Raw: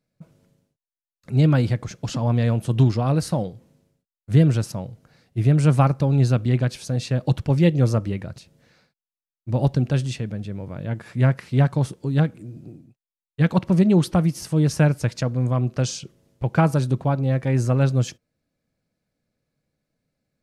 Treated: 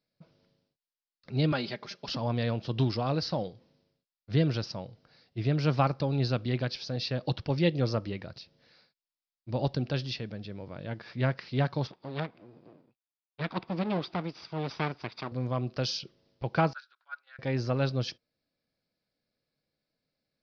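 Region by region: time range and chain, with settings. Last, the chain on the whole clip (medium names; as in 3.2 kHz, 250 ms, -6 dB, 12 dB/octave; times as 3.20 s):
1.52–2.08 s: high-pass 340 Hz 6 dB/octave + comb 5 ms, depth 62%
11.87–15.32 s: comb filter that takes the minimum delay 0.83 ms + high-pass 300 Hz 6 dB/octave + distance through air 190 m
16.73–17.39 s: level held to a coarse grid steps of 10 dB + ladder high-pass 1.4 kHz, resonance 85% + three bands expanded up and down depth 100%
whole clip: steep low-pass 5.2 kHz 72 dB/octave; de-esser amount 60%; tone controls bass -7 dB, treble +13 dB; trim -5 dB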